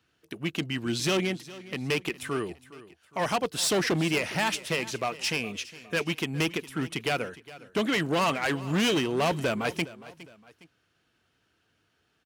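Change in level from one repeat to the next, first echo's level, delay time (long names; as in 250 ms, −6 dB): −8.0 dB, −18.0 dB, 411 ms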